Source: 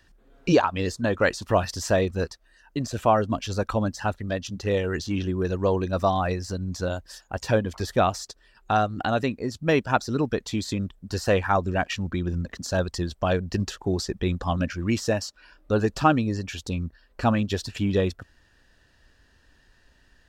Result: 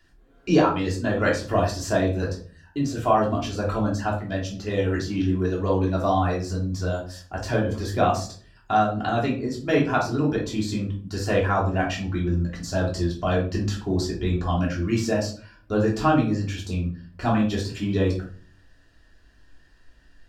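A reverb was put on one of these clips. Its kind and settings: shoebox room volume 330 m³, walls furnished, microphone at 3.2 m; gain -5.5 dB

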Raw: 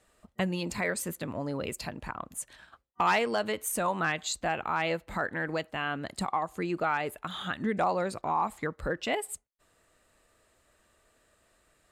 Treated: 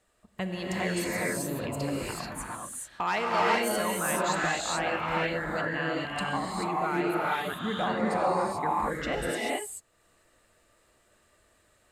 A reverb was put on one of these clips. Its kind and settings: non-linear reverb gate 0.46 s rising, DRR -5 dB; gain -4 dB

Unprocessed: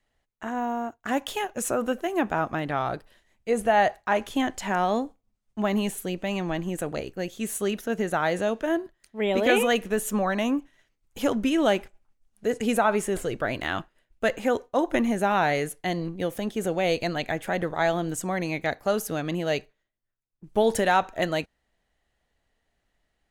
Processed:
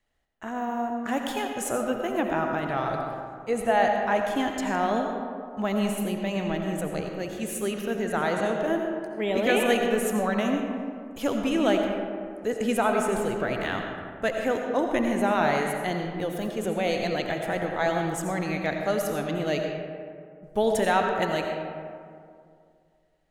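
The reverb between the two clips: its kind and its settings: digital reverb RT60 2.3 s, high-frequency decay 0.4×, pre-delay 45 ms, DRR 2.5 dB; gain -2.5 dB

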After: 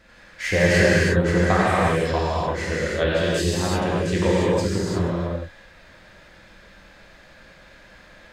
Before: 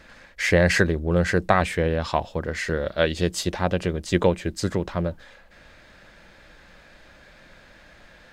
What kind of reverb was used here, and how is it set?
non-linear reverb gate 0.38 s flat, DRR -7.5 dB; gain -6 dB

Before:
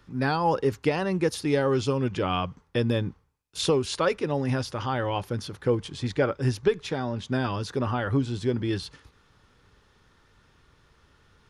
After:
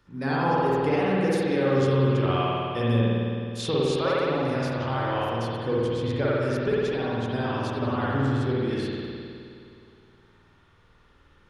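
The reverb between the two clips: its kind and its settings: spring tank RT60 2.5 s, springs 52 ms, chirp 40 ms, DRR -7 dB; gain -6 dB

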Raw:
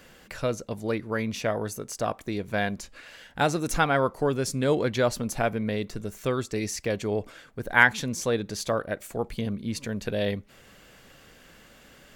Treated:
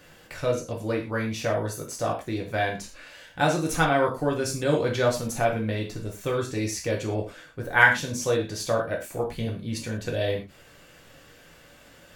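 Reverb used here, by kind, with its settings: non-linear reverb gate 0.14 s falling, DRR -1 dB; gain -2.5 dB

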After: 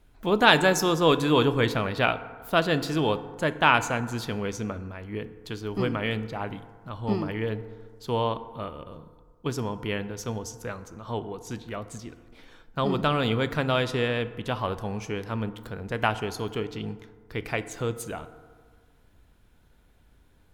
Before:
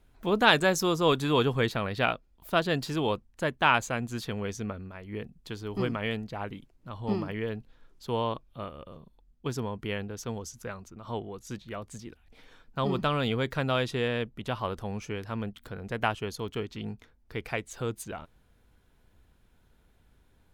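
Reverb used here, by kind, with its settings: FDN reverb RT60 1.7 s, low-frequency decay 0.9×, high-frequency decay 0.4×, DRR 11.5 dB; gain +3 dB

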